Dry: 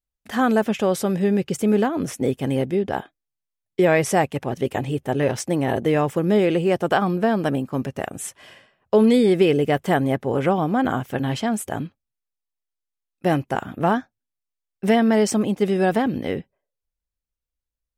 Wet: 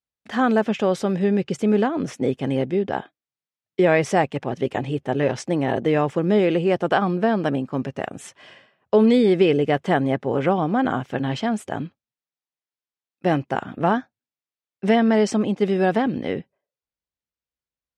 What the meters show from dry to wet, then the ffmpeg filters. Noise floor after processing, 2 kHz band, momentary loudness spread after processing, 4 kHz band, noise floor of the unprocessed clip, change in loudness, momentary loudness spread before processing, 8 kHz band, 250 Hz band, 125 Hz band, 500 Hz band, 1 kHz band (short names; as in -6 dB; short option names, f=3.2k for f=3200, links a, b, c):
under -85 dBFS, 0.0 dB, 10 LU, -0.5 dB, -85 dBFS, 0.0 dB, 11 LU, n/a, 0.0 dB, -1.0 dB, 0.0 dB, 0.0 dB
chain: -af "highpass=110,lowpass=5.3k"